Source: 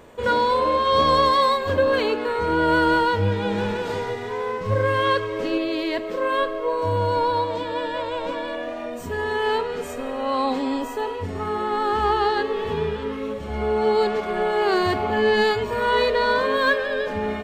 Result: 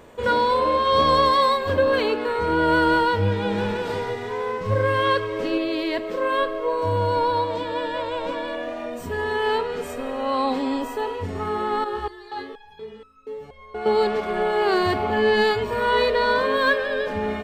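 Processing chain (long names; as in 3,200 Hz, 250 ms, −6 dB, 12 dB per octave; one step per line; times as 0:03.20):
dynamic equaliser 6,700 Hz, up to −5 dB, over −57 dBFS, Q 5.6
0:11.84–0:13.86: step-sequenced resonator 4.2 Hz 60–1,300 Hz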